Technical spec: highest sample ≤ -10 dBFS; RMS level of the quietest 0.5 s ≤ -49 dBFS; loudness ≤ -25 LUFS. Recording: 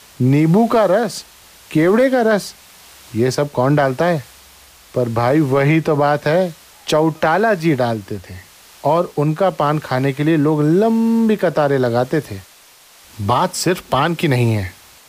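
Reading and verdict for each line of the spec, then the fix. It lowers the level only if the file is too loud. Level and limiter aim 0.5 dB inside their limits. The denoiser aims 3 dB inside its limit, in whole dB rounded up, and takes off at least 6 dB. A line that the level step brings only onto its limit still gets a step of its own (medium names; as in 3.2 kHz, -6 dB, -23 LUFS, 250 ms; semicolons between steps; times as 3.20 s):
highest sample -5.5 dBFS: fail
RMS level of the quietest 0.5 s -46 dBFS: fail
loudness -16.5 LUFS: fail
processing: trim -9 dB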